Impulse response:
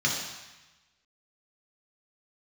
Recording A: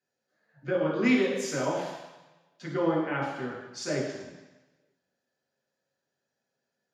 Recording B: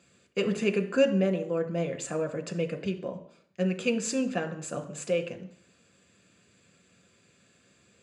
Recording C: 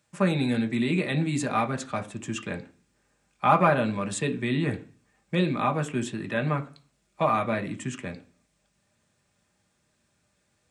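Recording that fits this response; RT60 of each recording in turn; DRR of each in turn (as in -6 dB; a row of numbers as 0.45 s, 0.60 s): A; 1.1 s, 0.60 s, 0.40 s; -3.0 dB, 6.0 dB, 5.0 dB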